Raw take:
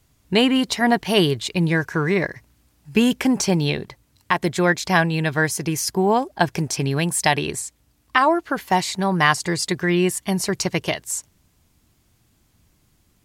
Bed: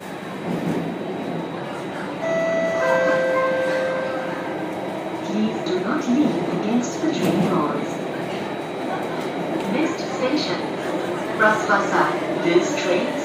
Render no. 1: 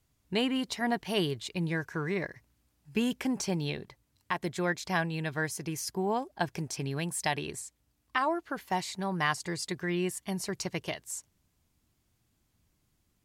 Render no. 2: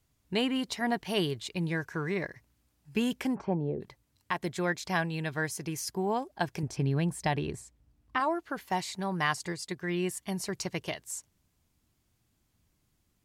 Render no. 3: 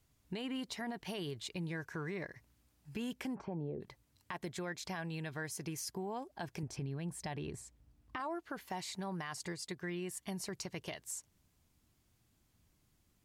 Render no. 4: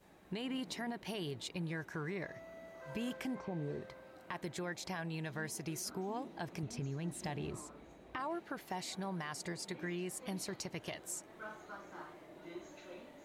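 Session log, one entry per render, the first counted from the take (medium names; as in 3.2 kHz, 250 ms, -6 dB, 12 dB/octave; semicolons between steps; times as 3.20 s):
trim -12 dB
3.34–3.80 s: resonant low-pass 1.5 kHz -> 380 Hz, resonance Q 1.9; 6.63–8.20 s: tilt EQ -2.5 dB/octave; 9.52–10.03 s: upward expansion, over -39 dBFS
peak limiter -24.5 dBFS, peak gain reduction 10 dB; compression 2:1, threshold -43 dBFS, peak gain reduction 8 dB
add bed -31.5 dB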